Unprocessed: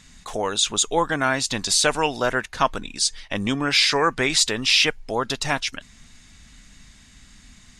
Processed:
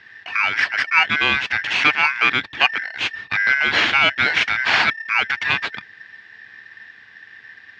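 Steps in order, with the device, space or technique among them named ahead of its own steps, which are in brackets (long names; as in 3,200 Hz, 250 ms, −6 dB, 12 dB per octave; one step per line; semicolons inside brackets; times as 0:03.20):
ring modulator pedal into a guitar cabinet (ring modulator with a square carrier 1,800 Hz; loudspeaker in its box 97–3,700 Hz, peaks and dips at 99 Hz +3 dB, 160 Hz −4 dB, 370 Hz −4 dB, 550 Hz −7 dB, 1,600 Hz +8 dB, 2,400 Hz +8 dB)
level +1 dB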